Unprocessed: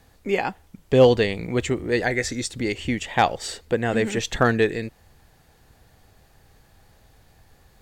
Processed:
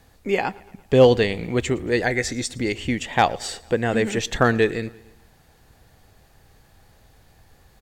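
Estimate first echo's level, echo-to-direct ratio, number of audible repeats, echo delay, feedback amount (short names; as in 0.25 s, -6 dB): -23.0 dB, -21.5 dB, 3, 0.113 s, 57%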